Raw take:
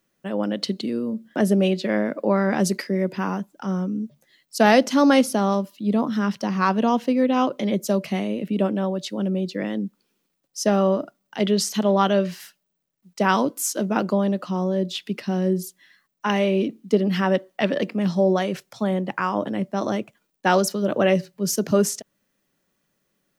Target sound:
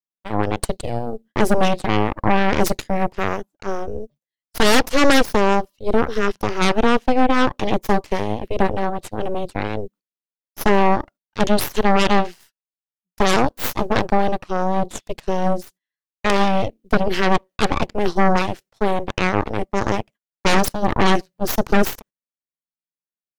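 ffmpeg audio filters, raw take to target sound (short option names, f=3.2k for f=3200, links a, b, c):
-af "agate=range=-22dB:threshold=-43dB:ratio=16:detection=peak,aeval=exprs='0.668*(cos(1*acos(clip(val(0)/0.668,-1,1)))-cos(1*PI/2))+0.0376*(cos(3*acos(clip(val(0)/0.668,-1,1)))-cos(3*PI/2))+0.0531*(cos(7*acos(clip(val(0)/0.668,-1,1)))-cos(7*PI/2))+0.299*(cos(8*acos(clip(val(0)/0.668,-1,1)))-cos(8*PI/2))':c=same,volume=-2.5dB"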